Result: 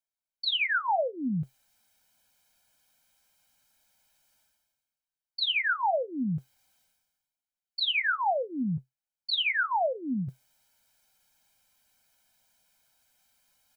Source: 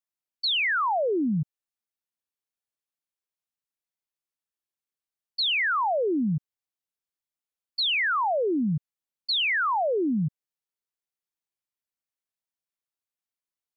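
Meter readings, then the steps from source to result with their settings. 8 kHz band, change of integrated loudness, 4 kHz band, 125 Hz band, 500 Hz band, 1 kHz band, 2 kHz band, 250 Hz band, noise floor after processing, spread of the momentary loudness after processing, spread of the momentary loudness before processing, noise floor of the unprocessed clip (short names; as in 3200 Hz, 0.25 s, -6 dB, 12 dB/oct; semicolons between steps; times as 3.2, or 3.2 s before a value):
n/a, -3.5 dB, -3.0 dB, -4.5 dB, -5.0 dB, -2.5 dB, -2.5 dB, -5.0 dB, under -85 dBFS, 11 LU, 10 LU, under -85 dBFS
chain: comb 1.3 ms, depth 86%; reverse; upward compressor, threshold -43 dBFS; reverse; flange 0.2 Hz, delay 3.1 ms, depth 1.1 ms, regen -66%; resonator 130 Hz, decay 0.15 s, harmonics all, mix 50%; gain +2.5 dB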